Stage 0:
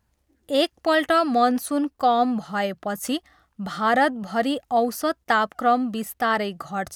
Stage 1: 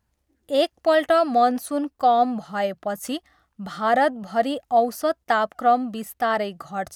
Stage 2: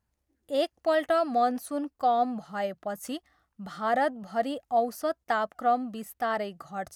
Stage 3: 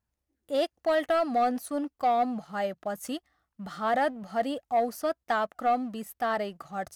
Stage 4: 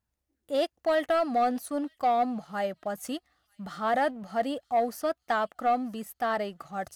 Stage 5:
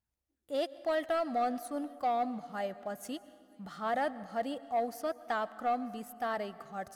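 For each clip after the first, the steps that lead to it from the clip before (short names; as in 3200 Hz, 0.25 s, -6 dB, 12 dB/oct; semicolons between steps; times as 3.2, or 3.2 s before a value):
dynamic EQ 650 Hz, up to +7 dB, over -35 dBFS, Q 2.4; gain -3 dB
bell 3400 Hz -2 dB; gain -6.5 dB
sample leveller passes 1; gain -3 dB
thin delay 0.939 s, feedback 40%, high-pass 3200 Hz, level -23 dB
plate-style reverb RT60 2.3 s, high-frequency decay 0.45×, pre-delay 0.105 s, DRR 16.5 dB; gain -6 dB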